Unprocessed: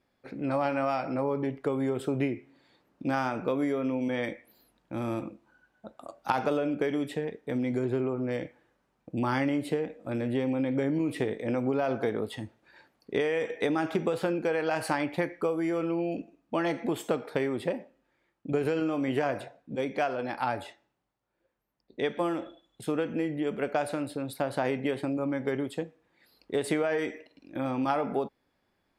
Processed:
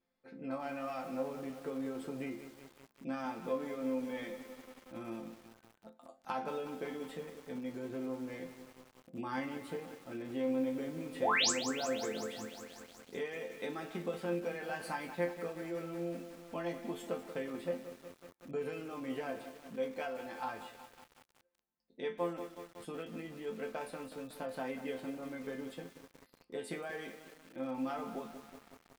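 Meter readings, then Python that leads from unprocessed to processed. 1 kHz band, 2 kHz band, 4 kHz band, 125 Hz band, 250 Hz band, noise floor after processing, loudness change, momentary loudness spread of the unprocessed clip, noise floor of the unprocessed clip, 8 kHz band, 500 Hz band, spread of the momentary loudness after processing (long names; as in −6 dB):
−9.0 dB, −7.0 dB, +0.5 dB, −14.0 dB, −10.5 dB, −70 dBFS, −9.0 dB, 10 LU, −75 dBFS, +4.0 dB, −9.5 dB, 15 LU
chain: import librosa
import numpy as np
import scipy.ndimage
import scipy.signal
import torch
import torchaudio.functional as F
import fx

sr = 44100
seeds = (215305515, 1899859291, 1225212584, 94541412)

y = fx.spec_paint(x, sr, seeds[0], shape='rise', start_s=11.21, length_s=0.3, low_hz=450.0, high_hz=8500.0, level_db=-19.0)
y = fx.resonator_bank(y, sr, root=53, chord='major', decay_s=0.22)
y = fx.echo_crushed(y, sr, ms=185, feedback_pct=80, bits=9, wet_db=-11.0)
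y = F.gain(torch.from_numpy(y), 3.5).numpy()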